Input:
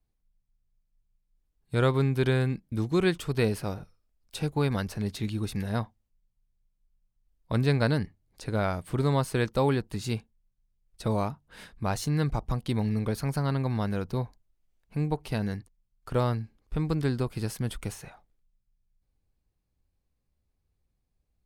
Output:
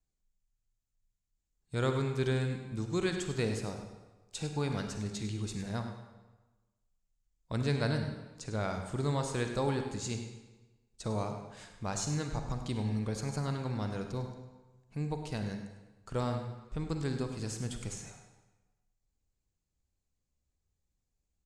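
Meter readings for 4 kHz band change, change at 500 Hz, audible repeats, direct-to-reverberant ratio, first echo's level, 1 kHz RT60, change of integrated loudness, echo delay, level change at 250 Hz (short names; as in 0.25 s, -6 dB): -3.5 dB, -6.0 dB, 1, 5.0 dB, -12.0 dB, 1.2 s, -6.5 dB, 0.102 s, -6.5 dB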